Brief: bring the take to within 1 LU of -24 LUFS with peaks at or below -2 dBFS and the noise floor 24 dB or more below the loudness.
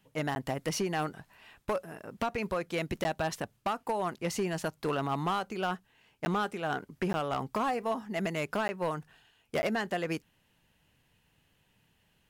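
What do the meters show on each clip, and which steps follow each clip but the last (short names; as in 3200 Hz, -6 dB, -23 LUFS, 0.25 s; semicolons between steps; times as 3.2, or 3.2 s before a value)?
clipped 1.6%; flat tops at -24.5 dBFS; dropouts 6; longest dropout 10 ms; loudness -33.5 LUFS; peak -24.5 dBFS; loudness target -24.0 LUFS
-> clip repair -24.5 dBFS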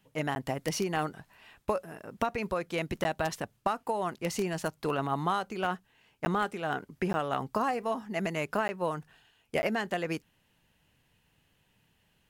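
clipped 0.0%; dropouts 6; longest dropout 10 ms
-> interpolate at 0.35/3.04/6.25/7.13/8.68/9.62, 10 ms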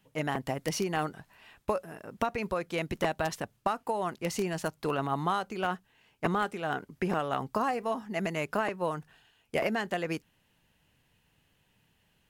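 dropouts 0; loudness -32.5 LUFS; peak -12.0 dBFS; loudness target -24.0 LUFS
-> gain +8.5 dB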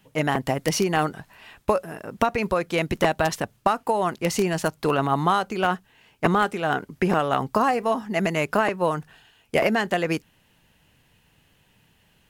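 loudness -24.0 LUFS; peak -3.5 dBFS; noise floor -62 dBFS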